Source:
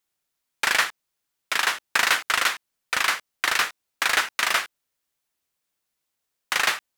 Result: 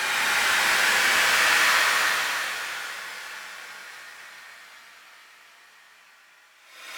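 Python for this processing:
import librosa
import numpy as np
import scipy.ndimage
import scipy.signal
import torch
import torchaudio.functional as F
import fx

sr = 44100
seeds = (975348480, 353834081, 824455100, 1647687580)

y = fx.rev_double_slope(x, sr, seeds[0], early_s=0.96, late_s=3.0, knee_db=-20, drr_db=8.5)
y = fx.paulstretch(y, sr, seeds[1], factor=8.2, window_s=0.25, from_s=0.6)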